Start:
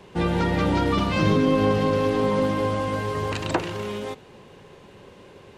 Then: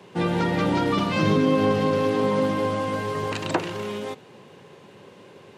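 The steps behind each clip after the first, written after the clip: high-pass 110 Hz 24 dB/octave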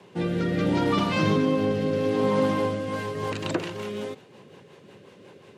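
rotary cabinet horn 0.7 Hz, later 5.5 Hz, at 2.49 s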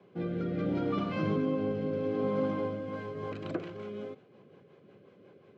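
tape spacing loss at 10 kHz 26 dB; comb of notches 910 Hz; trim -6 dB

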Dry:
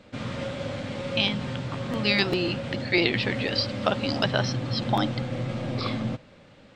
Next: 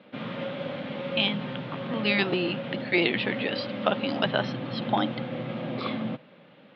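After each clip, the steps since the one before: elliptic band-pass 160–3400 Hz, stop band 60 dB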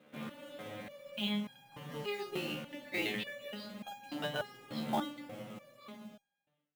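fade out at the end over 1.67 s; short-mantissa float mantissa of 2-bit; resonator arpeggio 3.4 Hz 75–810 Hz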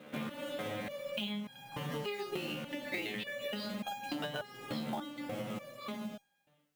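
compression 12:1, threshold -45 dBFS, peak gain reduction 17 dB; trim +10 dB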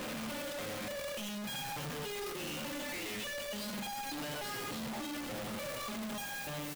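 one-bit comparator; on a send: delay 81 ms -11.5 dB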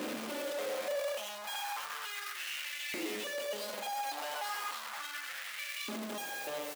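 LFO high-pass saw up 0.34 Hz 280–2500 Hz

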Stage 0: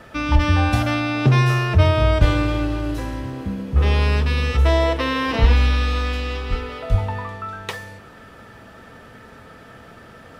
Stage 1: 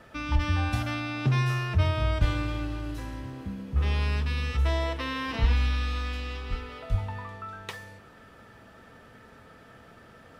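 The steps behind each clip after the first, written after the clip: dynamic bell 490 Hz, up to -6 dB, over -35 dBFS, Q 1; trim -8.5 dB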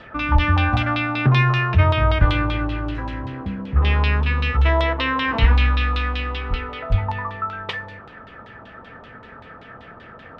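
LFO low-pass saw down 5.2 Hz 870–3800 Hz; trim +8 dB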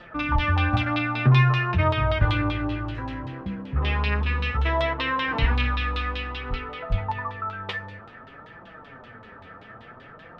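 flange 0.58 Hz, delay 5.5 ms, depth 5.3 ms, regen +35%

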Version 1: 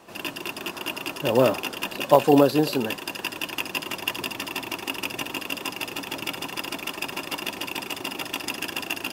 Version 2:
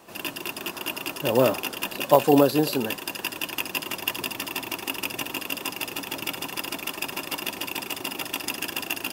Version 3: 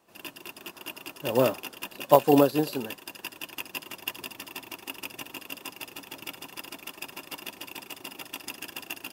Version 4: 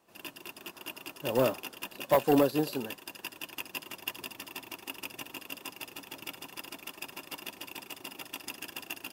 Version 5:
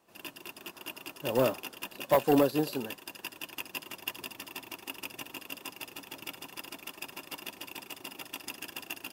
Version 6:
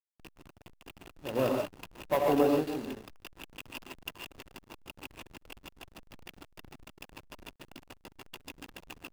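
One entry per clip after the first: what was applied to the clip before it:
treble shelf 10 kHz +9 dB; trim -1 dB
upward expansion 1.5:1, over -41 dBFS
saturation -12.5 dBFS, distortion -12 dB; trim -2.5 dB
no audible change
gated-style reverb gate 170 ms rising, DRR -0.5 dB; hysteresis with a dead band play -27.5 dBFS; trim -4 dB

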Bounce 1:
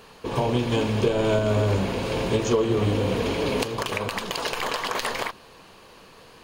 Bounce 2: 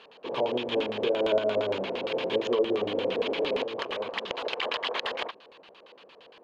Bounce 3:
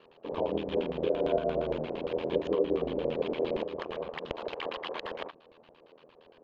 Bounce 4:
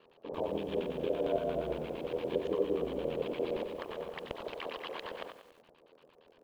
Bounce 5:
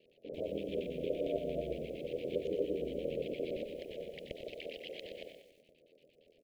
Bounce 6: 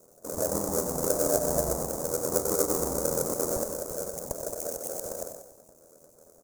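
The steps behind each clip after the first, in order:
high-pass 330 Hz 12 dB/octave; LFO low-pass square 8.7 Hz 570–3300 Hz; trim -5 dB
tilt EQ -3 dB/octave; ring modulator 41 Hz; trim -3 dB
bit-crushed delay 94 ms, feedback 55%, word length 9-bit, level -9 dB; trim -4.5 dB
Chebyshev band-stop 610–2200 Hz, order 3; on a send: delay 122 ms -10.5 dB; on the sum: trim -2.5 dB
square wave that keeps the level; FFT filter 100 Hz 0 dB, 430 Hz -4 dB, 730 Hz +7 dB, 3 kHz -29 dB, 6.6 kHz +10 dB; trim +6 dB

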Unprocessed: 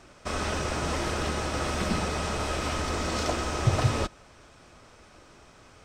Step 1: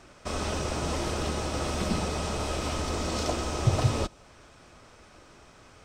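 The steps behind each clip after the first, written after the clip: dynamic bell 1.7 kHz, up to -6 dB, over -49 dBFS, Q 1.3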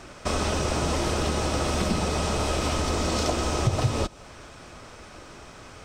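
compression 2.5:1, threshold -32 dBFS, peak gain reduction 10.5 dB; trim +8.5 dB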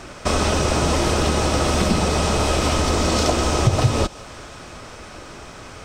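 thinning echo 184 ms, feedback 78%, level -22 dB; trim +6.5 dB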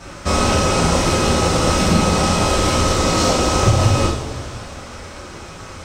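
two-slope reverb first 0.56 s, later 2.9 s, from -15 dB, DRR -7.5 dB; trim -5 dB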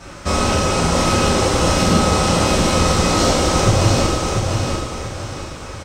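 feedback delay 692 ms, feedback 35%, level -4 dB; trim -1 dB

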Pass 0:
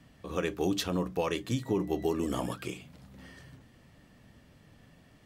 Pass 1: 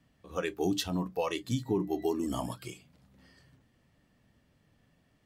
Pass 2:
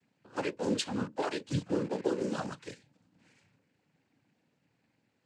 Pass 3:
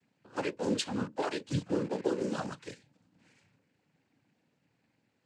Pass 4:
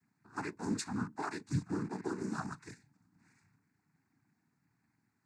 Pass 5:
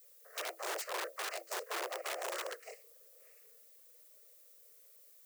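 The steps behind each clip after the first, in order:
spectral noise reduction 10 dB
in parallel at -5.5 dB: word length cut 6-bit, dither none; on the sum: noise-vocoded speech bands 8; trim -4.5 dB
no audible change
static phaser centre 1.3 kHz, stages 4
integer overflow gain 33 dB; frequency shift +330 Hz; added noise violet -61 dBFS

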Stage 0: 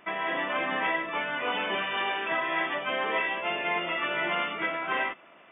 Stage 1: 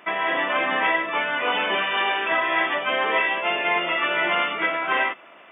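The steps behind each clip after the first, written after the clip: high-pass 290 Hz 6 dB/octave; trim +7 dB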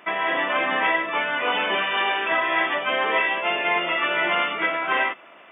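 no audible change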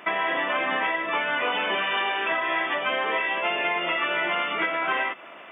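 compression 10:1, threshold -26 dBFS, peak gain reduction 10 dB; trim +4 dB

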